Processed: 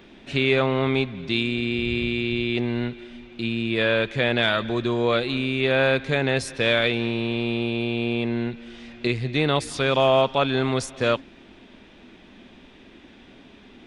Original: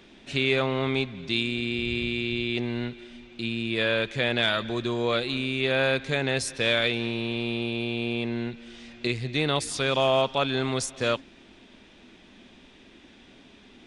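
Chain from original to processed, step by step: bell 7900 Hz -8 dB 2 oct; gain +4.5 dB

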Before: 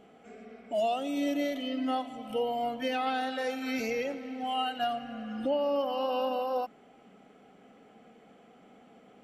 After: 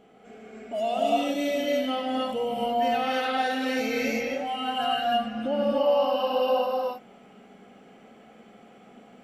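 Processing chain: non-linear reverb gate 0.34 s rising, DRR -5 dB

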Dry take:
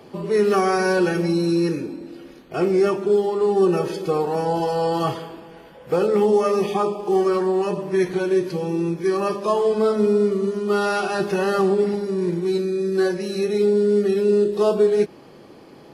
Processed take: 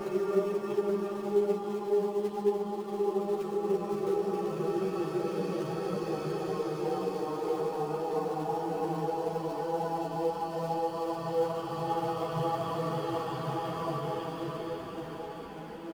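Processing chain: high shelf 2600 Hz -8.5 dB; reverse; compressor 20:1, threshold -27 dBFS, peak gain reduction 15 dB; reverse; doubler 38 ms -8 dB; Paulstretch 5.9×, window 1.00 s, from 2.89; in parallel at -10.5 dB: companded quantiser 4-bit; on the sum: ensemble effect

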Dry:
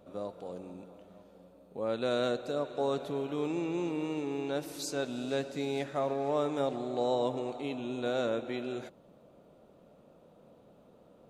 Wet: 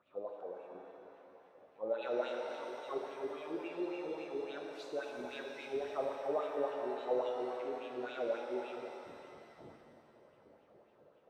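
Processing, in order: wind noise 180 Hz -48 dBFS; wah 3.6 Hz 380–2900 Hz, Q 4.3; shimmer reverb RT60 2.7 s, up +7 st, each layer -8 dB, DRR 2.5 dB; gain +1 dB

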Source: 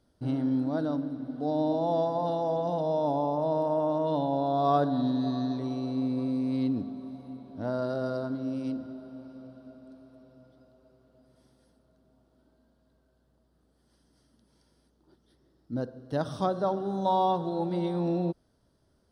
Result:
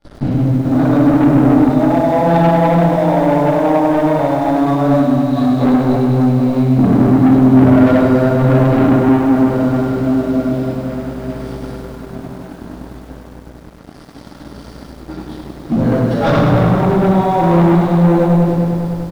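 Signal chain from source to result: chorus voices 2, 0.58 Hz, delay 19 ms, depth 4.1 ms; negative-ratio compressor -41 dBFS, ratio -1; 15.82–16.27 HPF 520 Hz 12 dB/oct; treble ducked by the level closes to 2100 Hz, closed at -33 dBFS; shoebox room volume 480 m³, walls mixed, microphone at 7.9 m; sample leveller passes 2; high shelf 4700 Hz -12 dB; feedback echo 0.136 s, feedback 53%, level -14 dB; sample leveller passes 2; lo-fi delay 0.1 s, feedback 80%, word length 7-bit, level -8 dB; gain -1 dB

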